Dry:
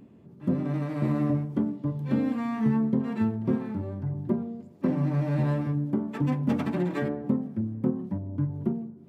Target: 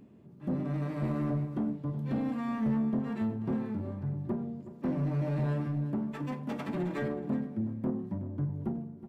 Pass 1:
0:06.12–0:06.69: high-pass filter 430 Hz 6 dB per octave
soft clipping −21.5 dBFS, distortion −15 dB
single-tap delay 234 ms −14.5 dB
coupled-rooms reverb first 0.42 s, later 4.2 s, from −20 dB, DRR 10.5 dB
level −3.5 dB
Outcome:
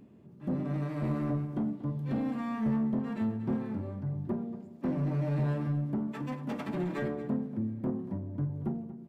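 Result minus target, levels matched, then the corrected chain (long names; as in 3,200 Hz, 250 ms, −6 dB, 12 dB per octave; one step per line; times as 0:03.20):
echo 136 ms early
0:06.12–0:06.69: high-pass filter 430 Hz 6 dB per octave
soft clipping −21.5 dBFS, distortion −15 dB
single-tap delay 370 ms −14.5 dB
coupled-rooms reverb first 0.42 s, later 4.2 s, from −20 dB, DRR 10.5 dB
level −3.5 dB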